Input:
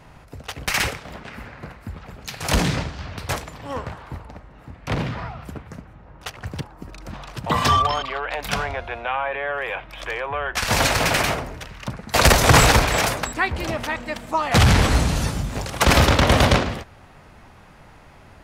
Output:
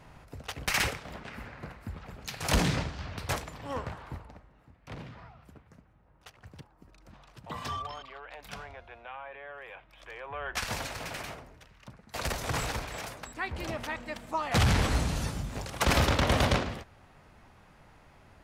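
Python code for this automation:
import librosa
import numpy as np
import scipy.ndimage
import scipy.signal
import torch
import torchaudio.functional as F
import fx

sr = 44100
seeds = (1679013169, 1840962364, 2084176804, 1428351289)

y = fx.gain(x, sr, db=fx.line((4.09, -6.0), (4.74, -18.5), (10.04, -18.5), (10.57, -8.0), (10.84, -19.0), (13.14, -19.0), (13.59, -9.5)))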